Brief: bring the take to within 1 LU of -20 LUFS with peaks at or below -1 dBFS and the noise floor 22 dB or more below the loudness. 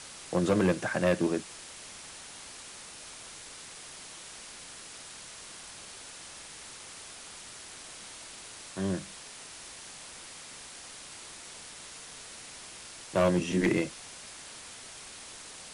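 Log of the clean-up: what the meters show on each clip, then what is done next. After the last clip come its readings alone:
clipped samples 0.3%; clipping level -19.0 dBFS; noise floor -47 dBFS; noise floor target -58 dBFS; loudness -35.5 LUFS; peak level -19.0 dBFS; loudness target -20.0 LUFS
-> clip repair -19 dBFS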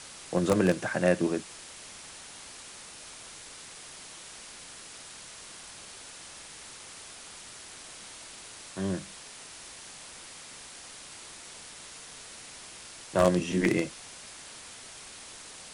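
clipped samples 0.0%; noise floor -47 dBFS; noise floor target -57 dBFS
-> noise print and reduce 10 dB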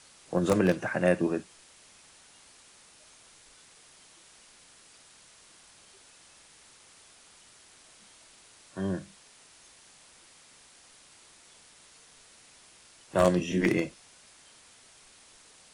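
noise floor -57 dBFS; loudness -28.0 LUFS; peak level -10.0 dBFS; loudness target -20.0 LUFS
-> trim +8 dB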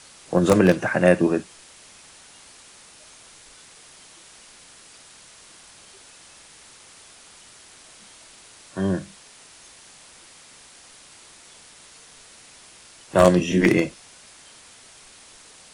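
loudness -20.0 LUFS; peak level -2.0 dBFS; noise floor -49 dBFS

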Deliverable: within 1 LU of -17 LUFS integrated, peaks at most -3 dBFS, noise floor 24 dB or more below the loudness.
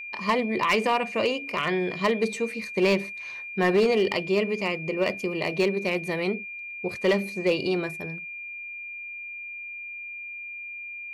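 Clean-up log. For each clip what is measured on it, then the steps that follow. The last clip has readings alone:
clipped samples 0.6%; clipping level -15.5 dBFS; steady tone 2.4 kHz; tone level -35 dBFS; loudness -27.0 LUFS; peak level -15.5 dBFS; loudness target -17.0 LUFS
-> clip repair -15.5 dBFS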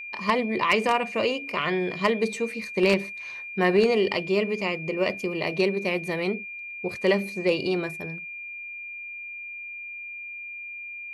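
clipped samples 0.0%; steady tone 2.4 kHz; tone level -35 dBFS
-> band-stop 2.4 kHz, Q 30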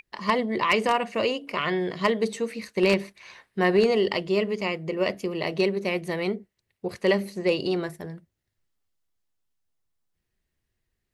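steady tone not found; loudness -25.5 LUFS; peak level -6.5 dBFS; loudness target -17.0 LUFS
-> trim +8.5 dB; peak limiter -3 dBFS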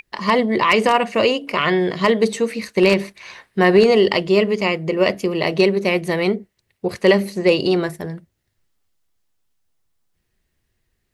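loudness -17.5 LUFS; peak level -3.0 dBFS; noise floor -73 dBFS

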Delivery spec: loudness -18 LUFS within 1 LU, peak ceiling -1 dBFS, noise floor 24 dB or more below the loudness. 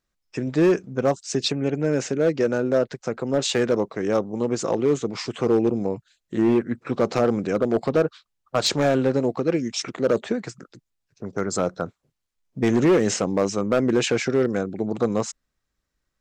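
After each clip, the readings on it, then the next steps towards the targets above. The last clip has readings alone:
clipped samples 1.6%; clipping level -13.0 dBFS; loudness -23.0 LUFS; peak level -13.0 dBFS; loudness target -18.0 LUFS
-> clip repair -13 dBFS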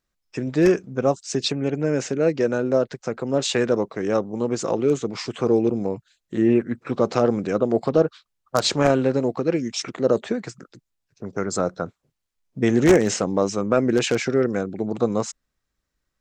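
clipped samples 0.0%; loudness -22.5 LUFS; peak level -4.0 dBFS; loudness target -18.0 LUFS
-> trim +4.5 dB; peak limiter -1 dBFS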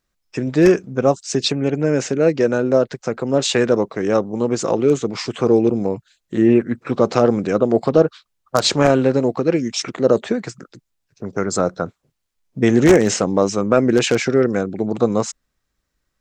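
loudness -18.0 LUFS; peak level -1.0 dBFS; noise floor -75 dBFS

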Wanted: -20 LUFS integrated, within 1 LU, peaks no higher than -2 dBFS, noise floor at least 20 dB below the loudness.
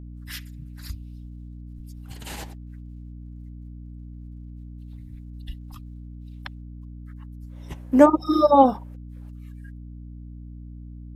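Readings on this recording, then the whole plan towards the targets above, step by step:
hum 60 Hz; highest harmonic 300 Hz; hum level -37 dBFS; loudness -18.5 LUFS; peak level -2.0 dBFS; loudness target -20.0 LUFS
-> de-hum 60 Hz, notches 5; trim -1.5 dB

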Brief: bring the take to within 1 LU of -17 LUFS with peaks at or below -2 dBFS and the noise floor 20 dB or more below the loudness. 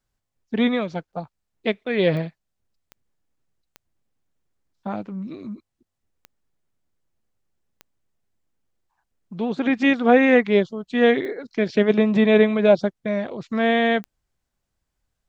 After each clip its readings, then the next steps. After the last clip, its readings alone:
clicks found 7; loudness -20.5 LUFS; peak level -3.0 dBFS; loudness target -17.0 LUFS
-> de-click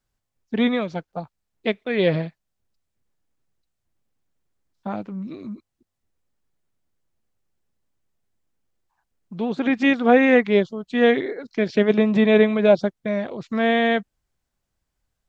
clicks found 0; loudness -20.5 LUFS; peak level -3.0 dBFS; loudness target -17.0 LUFS
-> trim +3.5 dB; peak limiter -2 dBFS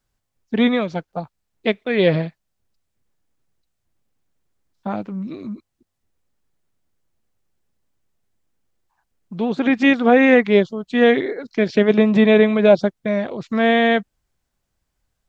loudness -17.5 LUFS; peak level -2.0 dBFS; noise floor -76 dBFS

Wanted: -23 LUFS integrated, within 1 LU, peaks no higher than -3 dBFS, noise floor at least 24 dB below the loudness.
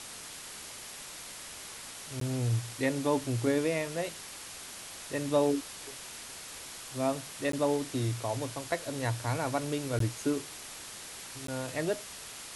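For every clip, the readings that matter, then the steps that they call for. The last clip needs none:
dropouts 4; longest dropout 13 ms; noise floor -45 dBFS; noise floor target -58 dBFS; loudness -34.0 LUFS; peak level -14.5 dBFS; loudness target -23.0 LUFS
-> interpolate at 2.20/7.52/9.99/11.47 s, 13 ms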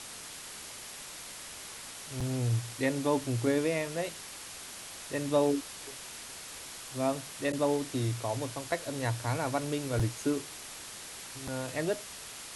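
dropouts 0; noise floor -45 dBFS; noise floor target -58 dBFS
-> noise reduction 13 dB, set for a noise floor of -45 dBFS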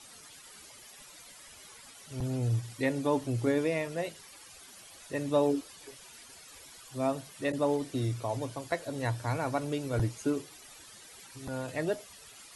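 noise floor -52 dBFS; noise floor target -57 dBFS
-> noise reduction 6 dB, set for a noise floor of -52 dBFS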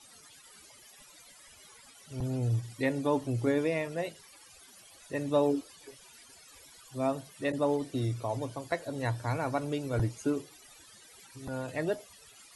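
noise floor -56 dBFS; noise floor target -57 dBFS
-> noise reduction 6 dB, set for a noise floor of -56 dBFS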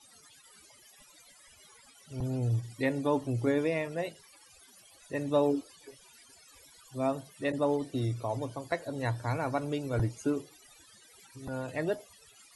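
noise floor -59 dBFS; loudness -32.5 LUFS; peak level -14.5 dBFS; loudness target -23.0 LUFS
-> trim +9.5 dB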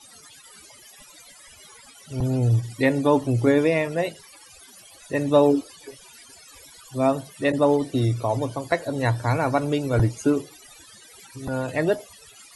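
loudness -23.0 LUFS; peak level -5.0 dBFS; noise floor -49 dBFS

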